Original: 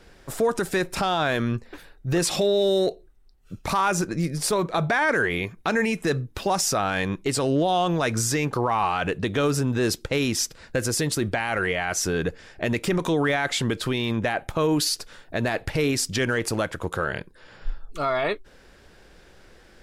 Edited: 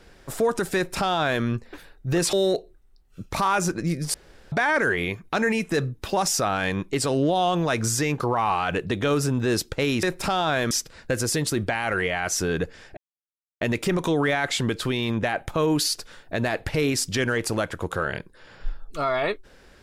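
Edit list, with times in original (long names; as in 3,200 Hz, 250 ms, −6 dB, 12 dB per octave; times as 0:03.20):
0:00.76–0:01.44: duplicate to 0:10.36
0:02.33–0:02.66: remove
0:04.47–0:04.85: fill with room tone
0:12.62: splice in silence 0.64 s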